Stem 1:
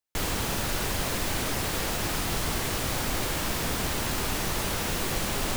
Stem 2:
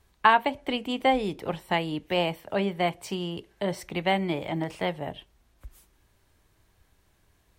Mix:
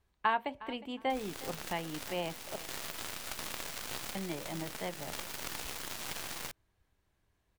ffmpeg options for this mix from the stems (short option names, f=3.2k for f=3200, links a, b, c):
-filter_complex "[0:a]lowshelf=f=360:g=-11,aeval=exprs='0.2*(cos(1*acos(clip(val(0)/0.2,-1,1)))-cos(1*PI/2))+0.0891*(cos(2*acos(clip(val(0)/0.2,-1,1)))-cos(2*PI/2))+0.0398*(cos(7*acos(clip(val(0)/0.2,-1,1)))-cos(7*PI/2))':c=same,adelay=950,volume=1dB[a];[1:a]volume=-10.5dB,asplit=3[b][c][d];[b]atrim=end=2.56,asetpts=PTS-STARTPTS,afade=t=out:st=2.556:d=0.004:c=hsin[e];[c]atrim=start=2.56:end=4.15,asetpts=PTS-STARTPTS,volume=0[f];[d]atrim=start=4.15,asetpts=PTS-STARTPTS,afade=t=in:d=0.004:c=hsin[g];[e][f][g]concat=n=3:v=0:a=1,asplit=3[h][i][j];[i]volume=-17.5dB[k];[j]apad=whole_len=287231[l];[a][l]sidechaincompress=threshold=-40dB:ratio=4:attack=39:release=516[m];[k]aecho=0:1:361|722|1083:1|0.21|0.0441[n];[m][h][n]amix=inputs=3:normalize=0,highshelf=f=5.3k:g=-6"